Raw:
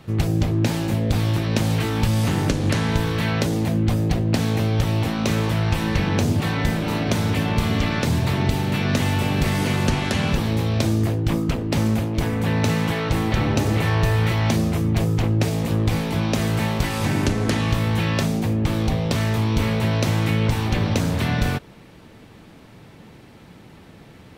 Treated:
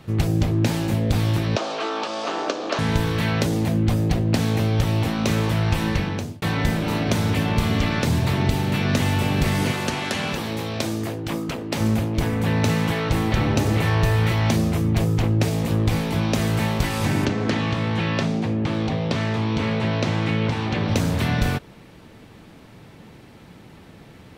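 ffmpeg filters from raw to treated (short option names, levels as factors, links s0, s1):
-filter_complex "[0:a]asettb=1/sr,asplit=3[s0][s1][s2];[s0]atrim=end=1.564[s3];[s1]atrim=start=1.56:end=2.79,asetpts=PTS-STARTPTS,afade=t=in:d=0.004:c=qsin,afade=t=out:st=1.226:d=0.004:c=qsin,highpass=f=340:w=0.5412,highpass=f=340:w=1.3066,equalizer=f=660:t=q:w=4:g=8,equalizer=f=1200:t=q:w=4:g=8,equalizer=f=2000:t=q:w=4:g=-6,lowpass=f=6000:w=0.5412,lowpass=f=6000:w=1.3066[s4];[s2]atrim=start=2.786[s5];[s3][s4]acrossfade=d=0.004:c1=hsin:c2=qsin[s6];[s6][s5]acrossfade=d=0.004:c1=qsin:c2=hsin,asettb=1/sr,asplit=3[s7][s8][s9];[s7]atrim=end=9.714[s10];[s8]atrim=start=9.71:end=11.81,asetpts=PTS-STARTPTS,afade=t=in:d=0.004:c=qsin,afade=t=out:st=2.096:d=0.004:c=qsin,highpass=f=340:p=1[s11];[s9]atrim=start=11.806[s12];[s10][s11]acrossfade=d=0.004:c1=hsin:c2=qsin[s13];[s13][s12]acrossfade=d=0.004:c1=qsin:c2=hsin,asettb=1/sr,asplit=3[s14][s15][s16];[s14]atrim=end=17.254[s17];[s15]atrim=start=17.25:end=20.89,asetpts=PTS-STARTPTS,afade=t=in:d=0.004:c=qsin,afade=t=out:st=3.636:d=0.004:c=qsin,highpass=120,lowpass=4700[s18];[s16]atrim=start=20.886[s19];[s17][s18]acrossfade=d=0.004:c1=hsin:c2=qsin[s20];[s20][s19]acrossfade=d=0.004:c1=qsin:c2=hsin,asplit=2[s21][s22];[s21]atrim=end=6.42,asetpts=PTS-STARTPTS,afade=t=out:st=5.88:d=0.54[s23];[s22]atrim=start=6.42,asetpts=PTS-STARTPTS,afade=t=in:d=0.004:c=hsin[s24];[s23][s24]concat=n=2:v=0:a=1"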